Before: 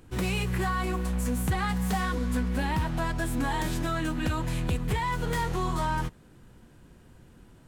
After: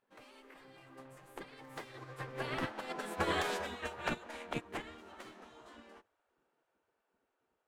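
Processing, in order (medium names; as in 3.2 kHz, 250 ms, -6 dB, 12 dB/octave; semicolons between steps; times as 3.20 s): Doppler pass-by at 3.40 s, 25 m/s, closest 24 m; spectral gate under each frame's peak -15 dB weak; low-pass 1.5 kHz 6 dB/octave; upward expansion 2.5:1, over -50 dBFS; trim +11 dB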